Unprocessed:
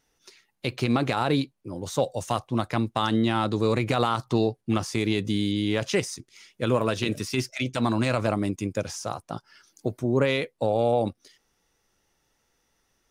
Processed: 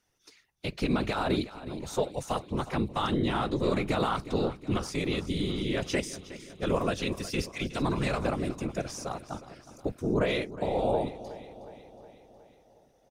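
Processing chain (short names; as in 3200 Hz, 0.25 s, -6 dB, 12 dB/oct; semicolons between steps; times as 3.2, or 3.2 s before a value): whisperiser; feedback echo 0.365 s, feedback 59%, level -15.5 dB; gain -4.5 dB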